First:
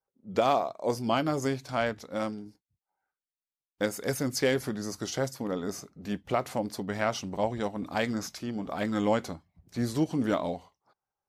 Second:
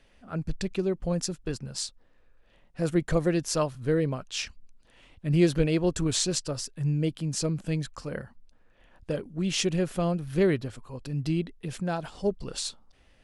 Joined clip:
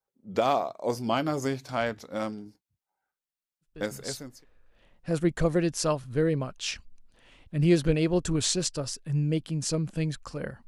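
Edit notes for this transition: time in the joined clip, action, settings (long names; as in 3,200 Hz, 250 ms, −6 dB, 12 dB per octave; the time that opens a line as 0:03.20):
first
0:04.03: continue with second from 0:01.74, crossfade 0.84 s linear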